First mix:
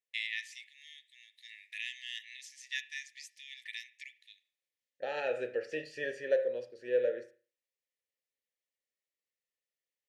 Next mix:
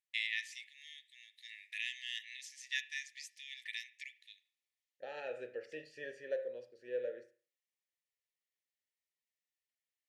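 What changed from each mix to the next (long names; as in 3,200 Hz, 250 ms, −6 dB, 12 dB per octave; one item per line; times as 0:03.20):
second voice −9.0 dB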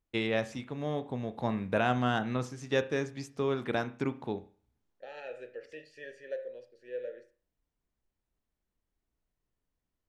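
first voice: remove linear-phase brick-wall high-pass 1,700 Hz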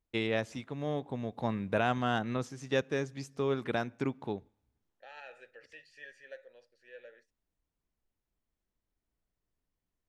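second voice: add low shelf with overshoot 660 Hz −9.5 dB, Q 1.5
reverb: off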